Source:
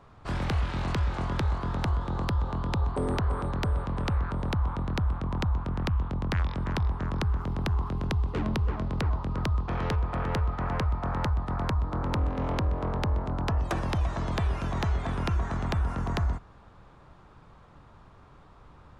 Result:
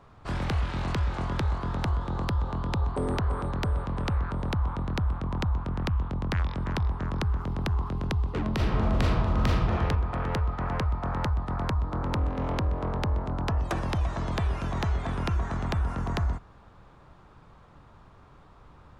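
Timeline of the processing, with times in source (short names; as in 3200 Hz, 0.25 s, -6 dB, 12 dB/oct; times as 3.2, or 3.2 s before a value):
8.55–9.71 reverb throw, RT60 1.3 s, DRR -4.5 dB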